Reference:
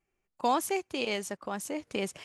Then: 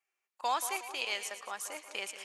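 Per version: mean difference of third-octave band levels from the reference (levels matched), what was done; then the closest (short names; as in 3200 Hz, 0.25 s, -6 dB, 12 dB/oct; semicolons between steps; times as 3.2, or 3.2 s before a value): 9.5 dB: HPF 950 Hz 12 dB/oct; on a send: split-band echo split 1300 Hz, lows 0.182 s, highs 0.113 s, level -11 dB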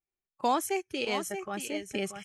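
4.0 dB: on a send: echo 0.63 s -7.5 dB; on the sum: spectral noise reduction 16 dB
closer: second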